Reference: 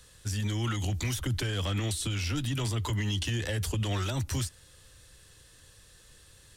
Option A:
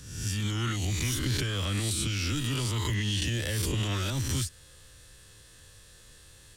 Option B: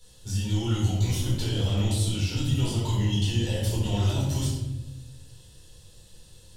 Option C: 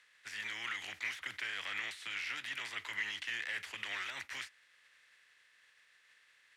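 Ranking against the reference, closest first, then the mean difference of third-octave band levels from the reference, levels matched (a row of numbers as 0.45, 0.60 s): A, B, C; 3.5, 6.0, 9.0 dB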